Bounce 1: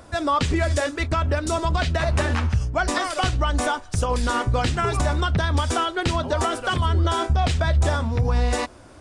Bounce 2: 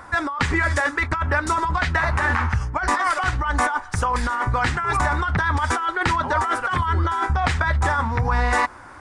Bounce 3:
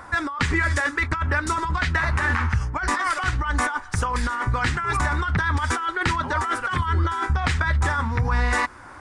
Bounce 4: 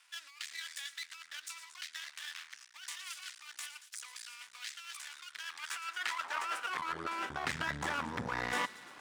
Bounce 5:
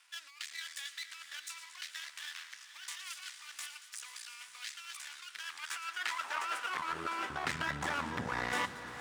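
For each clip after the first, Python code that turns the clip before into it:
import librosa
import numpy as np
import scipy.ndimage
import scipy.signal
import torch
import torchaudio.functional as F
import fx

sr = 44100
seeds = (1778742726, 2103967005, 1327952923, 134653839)

y1 = fx.band_shelf(x, sr, hz=1300.0, db=13.0, octaves=1.7)
y1 = fx.notch(y1, sr, hz=660.0, q=12.0)
y1 = fx.over_compress(y1, sr, threshold_db=-17.0, ratio=-1.0)
y1 = y1 * librosa.db_to_amplitude(-3.5)
y2 = fx.dynamic_eq(y1, sr, hz=720.0, q=1.2, threshold_db=-35.0, ratio=4.0, max_db=-7)
y3 = fx.echo_wet_highpass(y2, sr, ms=115, feedback_pct=74, hz=2300.0, wet_db=-13.0)
y3 = np.maximum(y3, 0.0)
y3 = fx.filter_sweep_highpass(y3, sr, from_hz=3500.0, to_hz=200.0, start_s=5.23, end_s=7.54, q=0.78)
y3 = y3 * librosa.db_to_amplitude(-7.0)
y4 = fx.echo_diffused(y3, sr, ms=498, feedback_pct=49, wet_db=-11)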